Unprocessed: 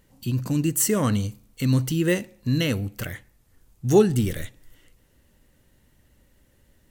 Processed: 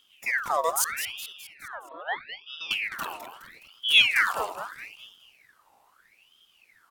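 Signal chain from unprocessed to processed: 0.84–2.71 s: cascade formant filter e; feedback delay 209 ms, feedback 49%, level -9.5 dB; ring modulator with a swept carrier 2 kHz, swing 60%, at 0.78 Hz

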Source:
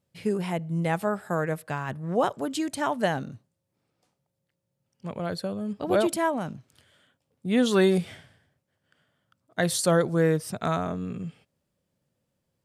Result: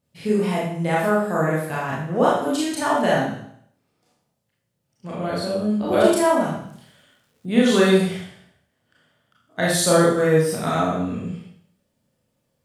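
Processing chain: Schroeder reverb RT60 0.64 s, combs from 26 ms, DRR -6 dB; 6.35–7.46 s: crackle 480 per s -54 dBFS

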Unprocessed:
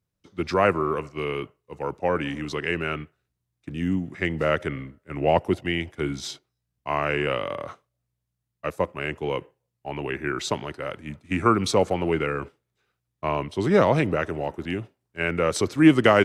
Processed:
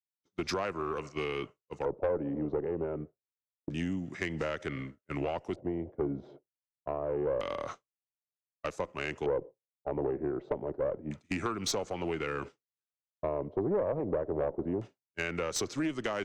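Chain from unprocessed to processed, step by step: expander -37 dBFS; bass shelf 80 Hz -10.5 dB; compression 10:1, threshold -28 dBFS, peak gain reduction 18 dB; LFO low-pass square 0.27 Hz 540–6600 Hz; valve stage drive 22 dB, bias 0.35

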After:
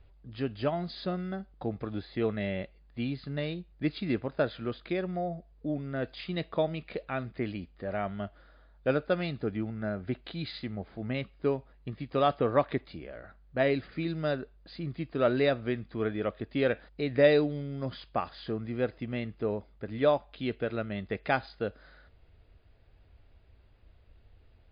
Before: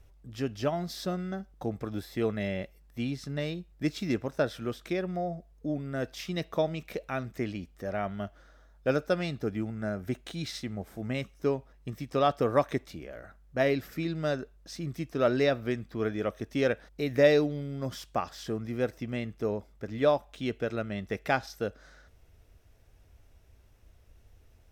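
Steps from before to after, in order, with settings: MP3 40 kbps 11.025 kHz

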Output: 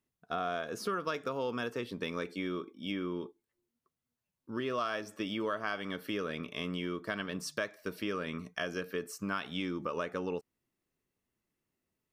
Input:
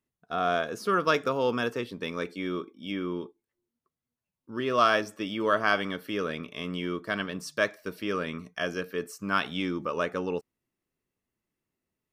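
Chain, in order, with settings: compression 5:1, threshold -32 dBFS, peak gain reduction 13.5 dB

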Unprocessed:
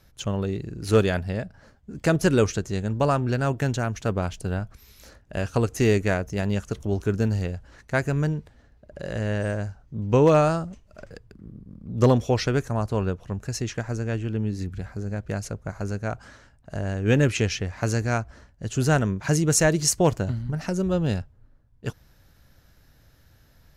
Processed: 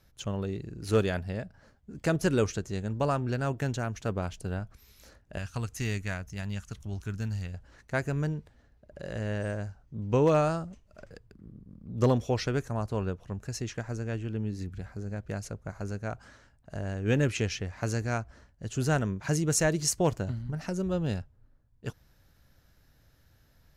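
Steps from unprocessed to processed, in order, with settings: 5.38–7.54 s: peaking EQ 430 Hz -13.5 dB 1.8 oct; trim -6 dB

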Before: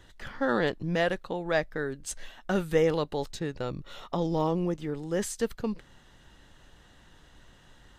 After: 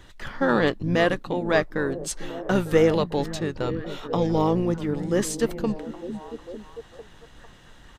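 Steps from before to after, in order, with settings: harmony voices -7 st -10 dB; repeats whose band climbs or falls 450 ms, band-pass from 200 Hz, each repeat 0.7 oct, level -8 dB; trim +5 dB

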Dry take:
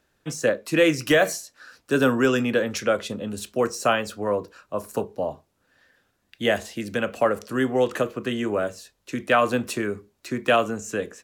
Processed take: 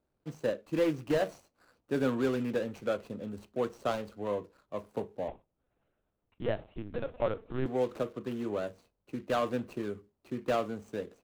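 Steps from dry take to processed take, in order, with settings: median filter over 25 samples; 5.28–7.66 s: LPC vocoder at 8 kHz pitch kept; trim -8.5 dB

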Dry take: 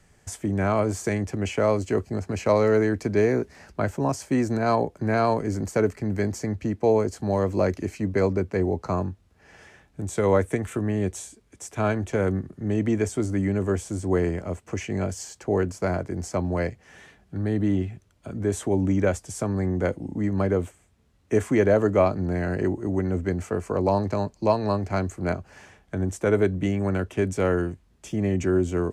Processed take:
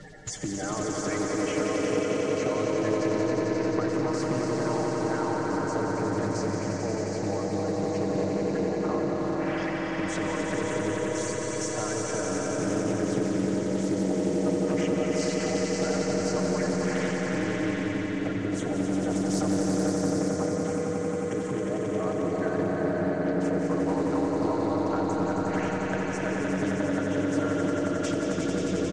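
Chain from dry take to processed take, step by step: coarse spectral quantiser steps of 30 dB; low-pass 7.1 kHz 24 dB/octave; bass shelf 150 Hz -7.5 dB; band-stop 2.5 kHz, Q 11; comb 6.5 ms, depth 75%; reverse; upward compressor, threshold -33 dBFS; reverse; peak limiter -18.5 dBFS, peak gain reduction 11.5 dB; compression 6:1, threshold -38 dBFS, peak gain reduction 14.5 dB; echo with a slow build-up 89 ms, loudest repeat 5, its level -6 dB; on a send at -2.5 dB: reverberation RT60 4.9 s, pre-delay 110 ms; on the sum: loudspeaker Doppler distortion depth 0.26 ms; trim +6.5 dB

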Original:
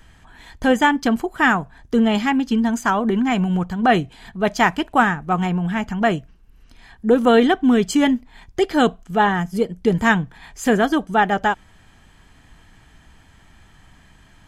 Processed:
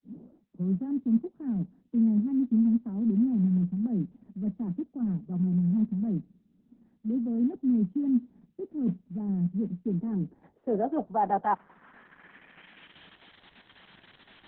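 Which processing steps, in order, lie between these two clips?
tape start-up on the opening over 0.92 s; reverse; compression 6:1, threshold -25 dBFS, peak gain reduction 15 dB; reverse; steep high-pass 160 Hz 96 dB/octave; low-pass sweep 230 Hz -> 4.5 kHz, 9.67–13.36 s; trim -3 dB; Opus 6 kbps 48 kHz

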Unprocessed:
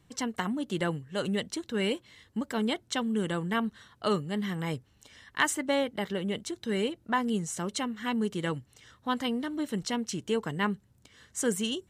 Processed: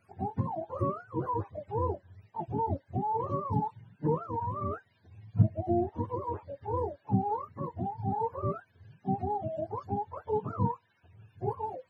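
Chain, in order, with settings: spectrum inverted on a logarithmic axis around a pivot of 440 Hz

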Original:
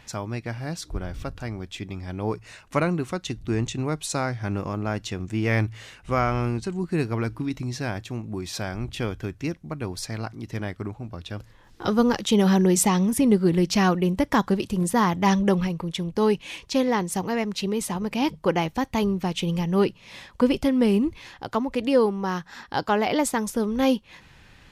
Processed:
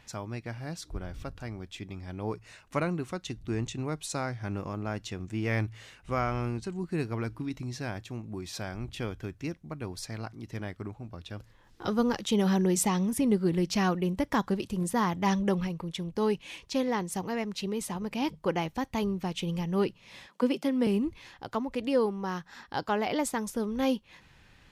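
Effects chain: 20.27–20.87 s: steep high-pass 160 Hz 96 dB/octave; trim -6.5 dB

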